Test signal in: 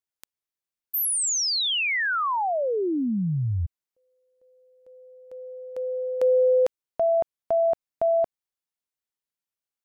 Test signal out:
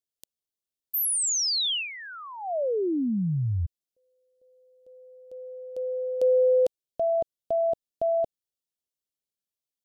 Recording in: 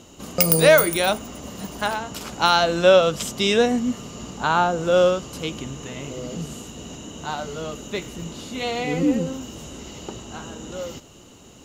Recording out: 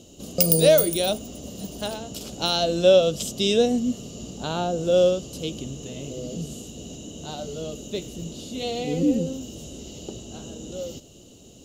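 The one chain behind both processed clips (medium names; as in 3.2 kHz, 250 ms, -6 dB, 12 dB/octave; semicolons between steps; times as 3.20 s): high-order bell 1.4 kHz -14.5 dB; trim -1 dB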